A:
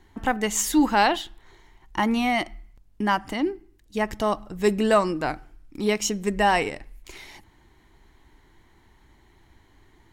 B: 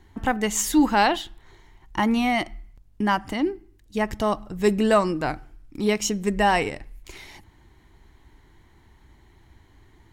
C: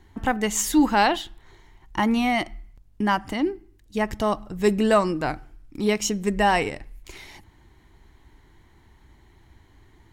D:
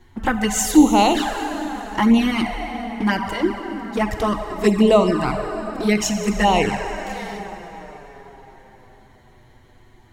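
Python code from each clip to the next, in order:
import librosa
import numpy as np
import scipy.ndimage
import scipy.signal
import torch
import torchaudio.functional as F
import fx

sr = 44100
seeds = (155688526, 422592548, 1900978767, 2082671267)

y1 = fx.peak_eq(x, sr, hz=80.0, db=5.5, octaves=2.3)
y2 = y1
y3 = fx.rev_plate(y2, sr, seeds[0], rt60_s=5.0, hf_ratio=0.65, predelay_ms=0, drr_db=5.0)
y3 = fx.env_flanger(y3, sr, rest_ms=8.7, full_db=-15.0)
y3 = y3 * 10.0 ** (6.0 / 20.0)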